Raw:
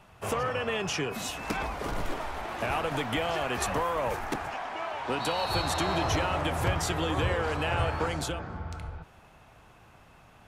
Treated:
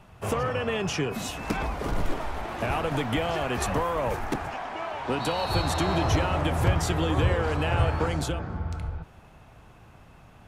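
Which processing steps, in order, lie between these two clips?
low-shelf EQ 390 Hz +7 dB

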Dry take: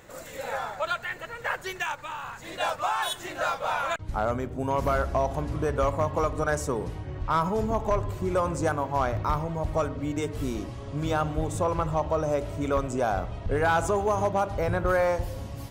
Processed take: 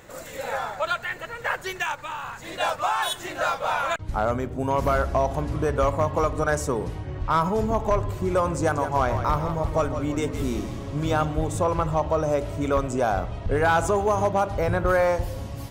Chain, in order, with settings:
0:08.59–0:11.25: echo with shifted repeats 165 ms, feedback 47%, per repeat −34 Hz, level −9 dB
level +3 dB

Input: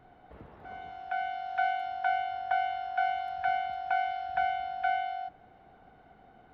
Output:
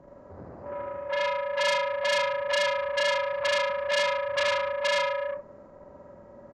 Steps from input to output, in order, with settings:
partials spread apart or drawn together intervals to 76%
loudspeakers that aren't time-aligned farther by 26 metres −1 dB, 46 metres −7 dB
saturating transformer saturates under 3,600 Hz
level +8 dB

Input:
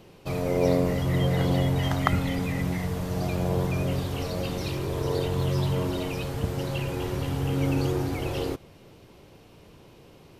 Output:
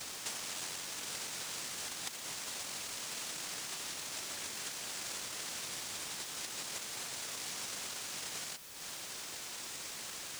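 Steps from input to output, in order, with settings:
tilt shelving filter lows −7.5 dB
cochlear-implant simulation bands 1
downward compressor 16 to 1, threshold −49 dBFS, peak gain reduction 30.5 dB
high-shelf EQ 6,300 Hz +6.5 dB
bit-depth reduction 10 bits, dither triangular
level +7.5 dB

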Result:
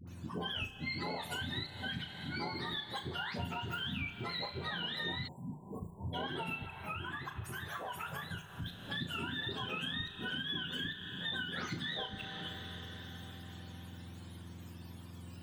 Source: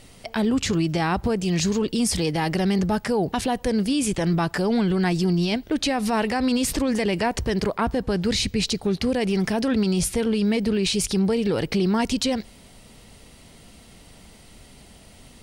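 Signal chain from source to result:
frequency axis turned over on the octave scale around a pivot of 830 Hz
gate with flip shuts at −13 dBFS, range −32 dB
high-shelf EQ 6,700 Hz −5.5 dB
mains-hum notches 50/100/150 Hz
all-pass dispersion highs, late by 75 ms, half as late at 660 Hz
convolution reverb RT60 5.7 s, pre-delay 40 ms, DRR 12 dB
downward compressor 4 to 1, threshold −35 dBFS, peak gain reduction 13 dB
flutter between parallel walls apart 6 metres, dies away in 0.26 s
0:05.28–0:06.14: time-frequency box erased 1,100–7,100 Hz
0:06.66–0:08.66: octave-band graphic EQ 250/500/1,000/4,000 Hz −9/−6/+4/−10 dB
level −3.5 dB

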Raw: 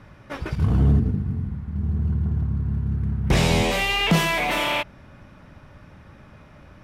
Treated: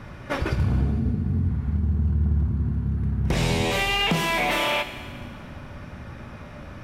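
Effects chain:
downward compressor, threshold −28 dBFS, peak gain reduction 13.5 dB
echo ahead of the sound 49 ms −23 dB
on a send at −7.5 dB: convolution reverb RT60 2.0 s, pre-delay 4 ms
on the sum: level +7 dB

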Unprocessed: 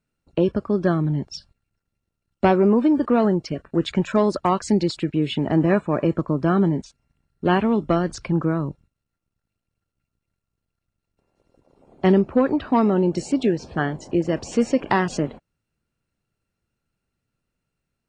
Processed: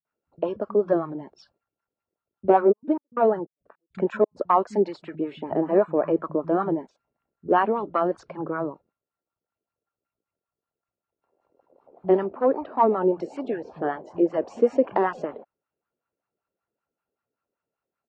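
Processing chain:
0:02.66–0:04.31: gate pattern "xxx..x.." 154 BPM −60 dB
LFO wah 5.2 Hz 420–1,200 Hz, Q 2.4
multiband delay without the direct sound lows, highs 50 ms, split 160 Hz
level +5.5 dB

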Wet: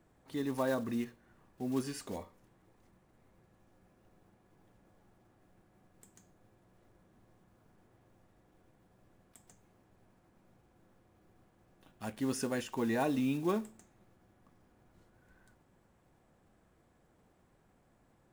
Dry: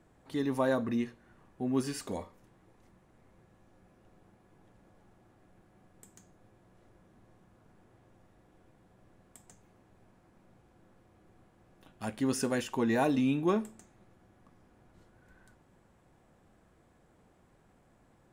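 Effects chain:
one scale factor per block 5 bits
level −4 dB

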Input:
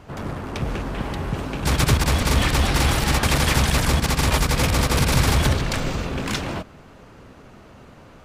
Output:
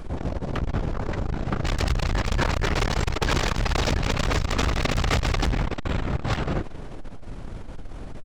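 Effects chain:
in parallel at −1 dB: brickwall limiter −16 dBFS, peak gain reduction 8.5 dB
on the sum: background noise brown −31 dBFS
pitch shifter −11.5 semitones
hard clipping −15.5 dBFS, distortion −10 dB
on a send: echo with shifted repeats 186 ms, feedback 58%, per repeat +130 Hz, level −21.5 dB
on the sum: saturating transformer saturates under 88 Hz

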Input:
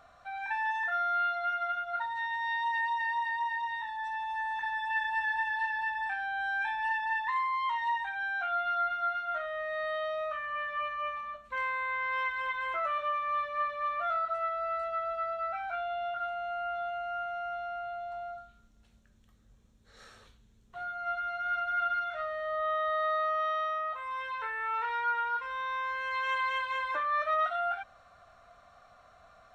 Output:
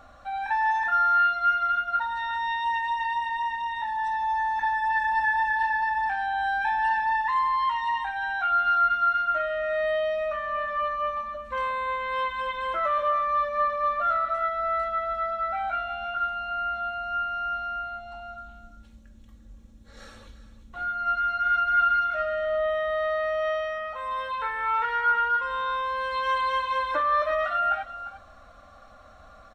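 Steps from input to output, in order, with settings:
low-shelf EQ 460 Hz +8 dB
comb filter 3.6 ms, depth 65%
single-tap delay 350 ms −13.5 dB
level +4 dB

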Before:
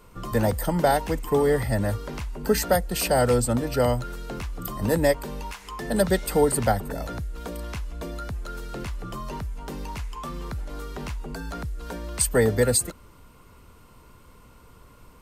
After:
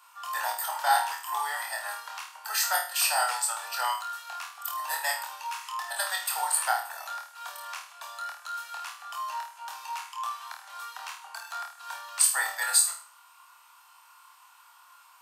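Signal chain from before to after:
Butterworth high-pass 800 Hz 48 dB per octave
notch filter 2,100 Hz, Q 8.8
on a send: flutter between parallel walls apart 4.4 metres, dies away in 0.42 s

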